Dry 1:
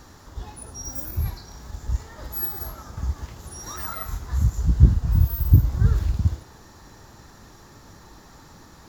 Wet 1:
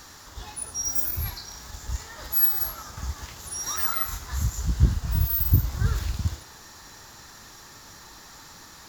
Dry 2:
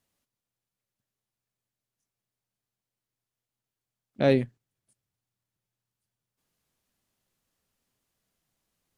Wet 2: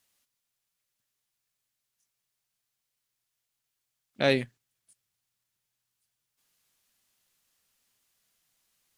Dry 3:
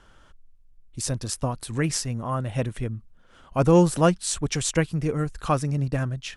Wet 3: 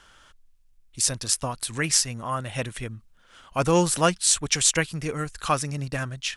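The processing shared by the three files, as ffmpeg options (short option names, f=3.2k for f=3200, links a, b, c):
-af "tiltshelf=f=970:g=-7,volume=1dB"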